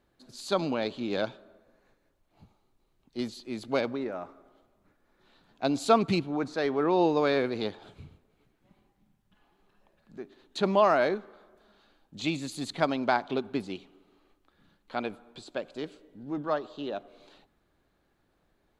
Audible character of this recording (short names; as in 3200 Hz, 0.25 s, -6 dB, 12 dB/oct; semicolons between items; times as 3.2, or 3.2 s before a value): noise floor -72 dBFS; spectral tilt -4.0 dB/oct